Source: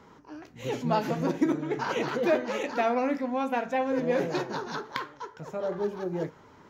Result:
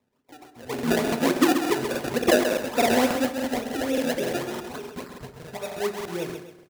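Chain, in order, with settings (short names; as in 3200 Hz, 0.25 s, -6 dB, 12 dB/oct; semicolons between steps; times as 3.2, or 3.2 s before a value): random spectral dropouts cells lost 34%; 0.87–3.25 dynamic EQ 420 Hz, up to +6 dB, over -38 dBFS, Q 0.73; decimation with a swept rate 28×, swing 100% 3.5 Hz; HPF 92 Hz 6 dB/oct; gate -51 dBFS, range -19 dB; feedback echo 0.132 s, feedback 36%, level -7 dB; reverb RT60 0.40 s, pre-delay 4 ms, DRR 6.5 dB; crackling interface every 0.29 s, samples 2048, repeat, from 0.74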